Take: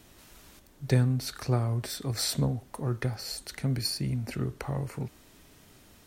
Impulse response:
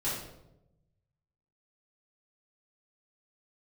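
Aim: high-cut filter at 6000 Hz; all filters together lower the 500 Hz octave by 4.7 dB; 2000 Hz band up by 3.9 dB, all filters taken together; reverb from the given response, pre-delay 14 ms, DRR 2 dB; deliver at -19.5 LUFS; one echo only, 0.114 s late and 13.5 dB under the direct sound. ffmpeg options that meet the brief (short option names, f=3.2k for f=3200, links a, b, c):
-filter_complex "[0:a]lowpass=6k,equalizer=f=500:t=o:g=-6.5,equalizer=f=2k:t=o:g=5,aecho=1:1:114:0.211,asplit=2[a][b];[1:a]atrim=start_sample=2205,adelay=14[c];[b][c]afir=irnorm=-1:irlink=0,volume=-8dB[d];[a][d]amix=inputs=2:normalize=0,volume=6.5dB"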